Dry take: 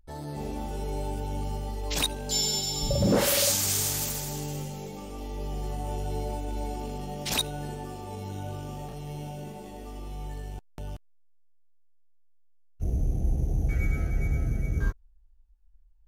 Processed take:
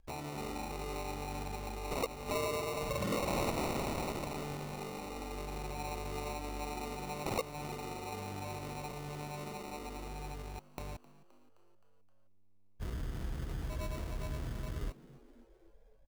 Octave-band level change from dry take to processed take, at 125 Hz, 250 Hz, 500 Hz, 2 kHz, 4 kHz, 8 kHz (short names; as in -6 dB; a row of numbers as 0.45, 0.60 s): -11.0, -7.5, -5.0, -5.5, -14.5, -17.5 dB